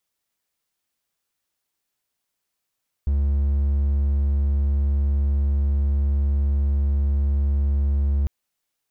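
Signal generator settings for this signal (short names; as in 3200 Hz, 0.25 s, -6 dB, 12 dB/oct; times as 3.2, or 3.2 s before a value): tone triangle 70.4 Hz -15.5 dBFS 5.20 s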